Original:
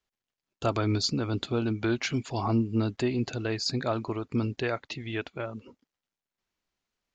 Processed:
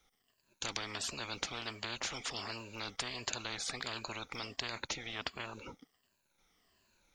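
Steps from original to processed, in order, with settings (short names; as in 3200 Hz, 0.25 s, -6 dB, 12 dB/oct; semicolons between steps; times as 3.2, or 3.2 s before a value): moving spectral ripple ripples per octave 1.4, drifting -1.4 Hz, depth 13 dB; spectral compressor 10:1; gain -2.5 dB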